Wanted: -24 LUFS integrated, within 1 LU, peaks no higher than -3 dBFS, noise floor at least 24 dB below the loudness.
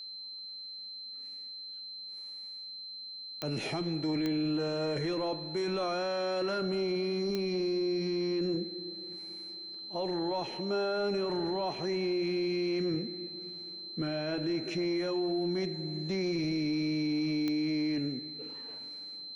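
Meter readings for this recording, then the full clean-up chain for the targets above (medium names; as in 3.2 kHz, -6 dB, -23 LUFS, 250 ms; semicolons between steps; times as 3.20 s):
clicks found 4; steady tone 4.1 kHz; tone level -41 dBFS; loudness -33.5 LUFS; peak level -17.5 dBFS; loudness target -24.0 LUFS
-> de-click; band-stop 4.1 kHz, Q 30; trim +9.5 dB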